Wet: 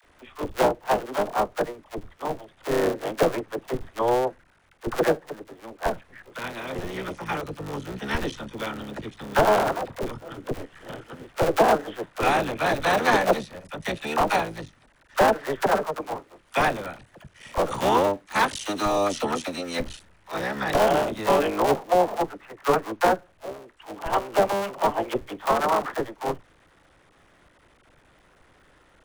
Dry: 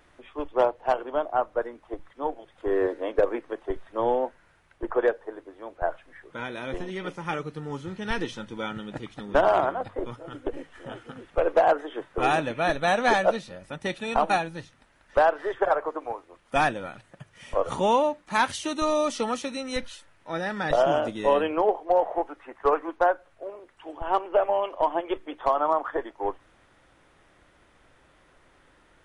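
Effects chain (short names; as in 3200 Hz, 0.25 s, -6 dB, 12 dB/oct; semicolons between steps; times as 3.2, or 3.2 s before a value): cycle switcher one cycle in 3, muted; dispersion lows, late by 42 ms, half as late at 610 Hz; gain +3 dB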